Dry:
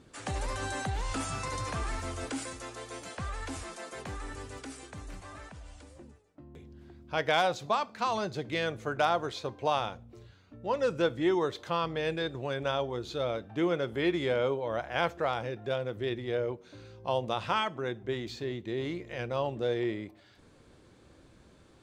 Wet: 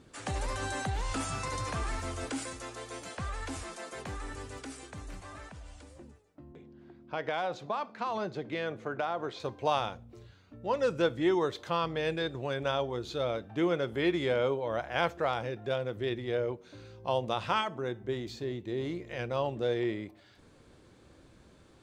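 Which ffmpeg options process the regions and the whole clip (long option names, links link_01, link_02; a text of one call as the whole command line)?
ffmpeg -i in.wav -filter_complex "[0:a]asettb=1/sr,asplit=3[link_01][link_02][link_03];[link_01]atrim=end=6.524[link_04];[link_02]atrim=start=6.52:end=9.4,asetpts=PTS-STARTPTS,afade=type=in:duration=0.004:curve=qsin,afade=type=out:start_time=2.876:duration=0.004:curve=qsin,aemphasis=mode=reproduction:type=75fm,acompressor=threshold=-29dB:ratio=3:attack=3.2:release=140:knee=1:detection=peak,highpass=160[link_05];[link_03]atrim=start=9.396[link_06];[link_04][link_05]acrossfade=duration=0.004:curve1=hsin:curve2=qsin[link_07];[link_07][link_06]acrossfade=duration=0.004:curve1=qsin:curve2=hsin,asettb=1/sr,asplit=3[link_08][link_09][link_10];[link_08]atrim=end=17.614[link_11];[link_09]atrim=start=17.61:end=19.02,asetpts=PTS-STARTPTS,afade=type=in:duration=0.004:curve=qsin,afade=type=out:start_time=1.406:duration=0.004:curve=qsin,equalizer=frequency=2300:width=0.69:gain=-4.5,bandreject=frequency=220.6:width_type=h:width=4,bandreject=frequency=441.2:width_type=h:width=4,bandreject=frequency=661.8:width_type=h:width=4,bandreject=frequency=882.4:width_type=h:width=4,bandreject=frequency=1103:width_type=h:width=4,bandreject=frequency=1323.6:width_type=h:width=4,bandreject=frequency=1544.2:width_type=h:width=4,bandreject=frequency=1764.8:width_type=h:width=4,bandreject=frequency=1985.4:width_type=h:width=4,bandreject=frequency=2206:width_type=h:width=4,bandreject=frequency=2426.6:width_type=h:width=4,bandreject=frequency=2647.2:width_type=h:width=4,bandreject=frequency=2867.8:width_type=h:width=4[link_12];[link_10]atrim=start=19.016[link_13];[link_11][link_12]acrossfade=duration=0.004:curve1=hsin:curve2=qsin[link_14];[link_14][link_13]acrossfade=duration=0.004:curve1=qsin:curve2=hsin" out.wav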